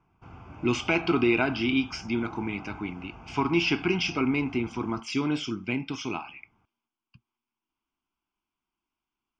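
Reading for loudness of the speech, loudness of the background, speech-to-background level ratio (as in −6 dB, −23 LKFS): −28.0 LKFS, −46.0 LKFS, 18.0 dB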